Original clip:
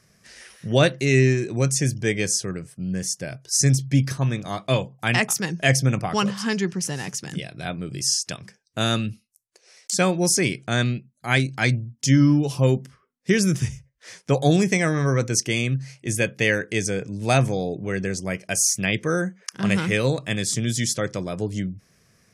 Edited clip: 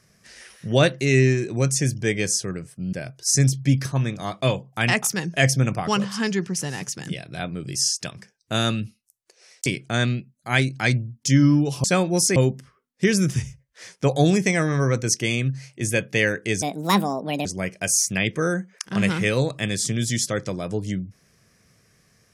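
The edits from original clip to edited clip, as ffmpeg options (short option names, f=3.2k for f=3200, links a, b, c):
-filter_complex "[0:a]asplit=7[a][b][c][d][e][f][g];[a]atrim=end=2.932[h];[b]atrim=start=3.188:end=9.922[i];[c]atrim=start=10.438:end=12.622[j];[d]atrim=start=9.918:end=10.442[k];[e]atrim=start=12.618:end=16.884[l];[f]atrim=start=16.88:end=18.13,asetpts=PTS-STARTPTS,asetrate=66150,aresample=44100[m];[g]atrim=start=18.126[n];[h][i]acrossfade=d=0.004:c1=hsin:c2=hsin[o];[o][j]acrossfade=d=0.004:c1=hsin:c2=hsin[p];[p][k]acrossfade=d=0.004:c1=hsin:c2=hsin[q];[q][l]acrossfade=d=0.004:c1=hsin:c2=hsin[r];[r][m]acrossfade=d=0.004:c1=hsin:c2=hsin[s];[s][n]acrossfade=d=0.004:c1=hsin:c2=hsin"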